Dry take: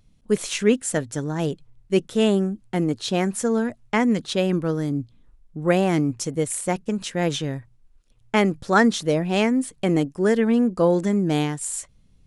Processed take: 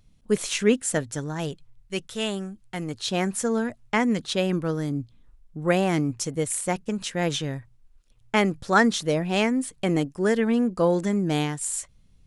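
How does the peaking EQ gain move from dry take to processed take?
peaking EQ 300 Hz 2.5 oct
0.95 s -2 dB
1.93 s -13 dB
2.76 s -13 dB
3.22 s -3.5 dB

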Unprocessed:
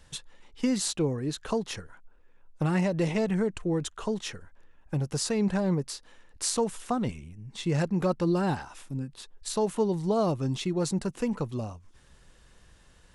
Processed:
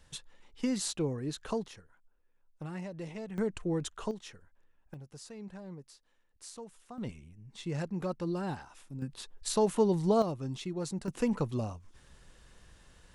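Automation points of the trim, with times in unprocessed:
-5 dB
from 1.68 s -14.5 dB
from 3.38 s -4 dB
from 4.11 s -12 dB
from 4.94 s -19 dB
from 6.98 s -8.5 dB
from 9.02 s 0 dB
from 10.22 s -8 dB
from 11.08 s -0.5 dB

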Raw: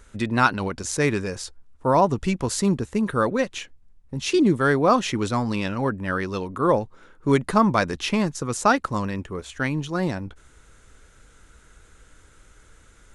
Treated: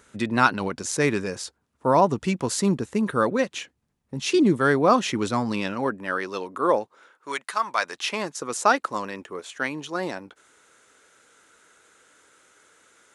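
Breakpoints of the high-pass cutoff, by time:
5.44 s 140 Hz
6.16 s 350 Hz
6.82 s 350 Hz
7.51 s 1.4 kHz
8.33 s 360 Hz

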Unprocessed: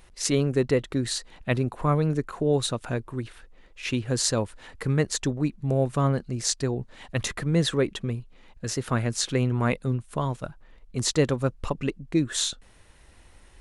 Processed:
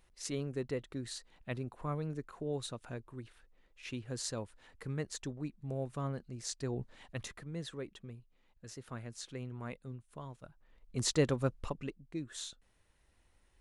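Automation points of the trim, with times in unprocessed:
6.54 s -14.5 dB
6.80 s -7 dB
7.46 s -19 dB
10.40 s -19 dB
10.99 s -7 dB
11.52 s -7 dB
12.07 s -17 dB

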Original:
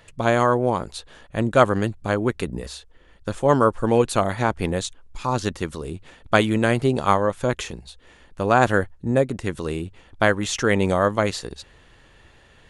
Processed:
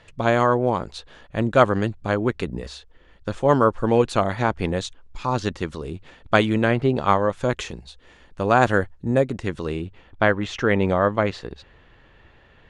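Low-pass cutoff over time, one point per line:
6.55 s 5.6 kHz
6.76 s 2.8 kHz
7.42 s 6.9 kHz
9.21 s 6.9 kHz
10.30 s 3 kHz

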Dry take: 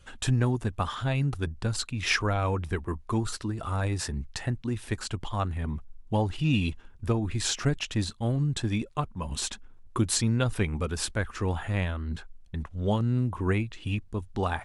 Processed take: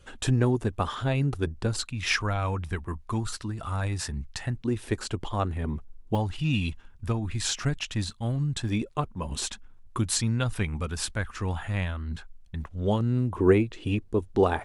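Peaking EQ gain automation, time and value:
peaking EQ 400 Hz 1.3 oct
+6 dB
from 1.81 s -5 dB
from 4.55 s +6.5 dB
from 6.15 s -5.5 dB
from 8.69 s +4 dB
from 9.46 s -5 dB
from 12.64 s +2.5 dB
from 13.36 s +12 dB

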